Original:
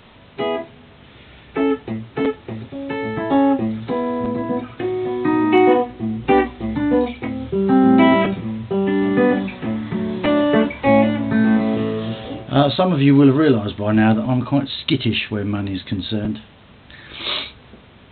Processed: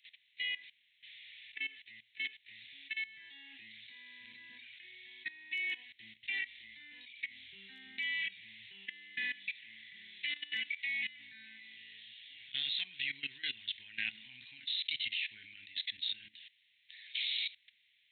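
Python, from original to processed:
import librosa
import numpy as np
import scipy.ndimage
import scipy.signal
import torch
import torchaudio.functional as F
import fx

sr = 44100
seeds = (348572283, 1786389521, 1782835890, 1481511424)

y = scipy.signal.sosfilt(scipy.signal.ellip(4, 1.0, 40, 2000.0, 'highpass', fs=sr, output='sos'), x)
y = fx.level_steps(y, sr, step_db=18)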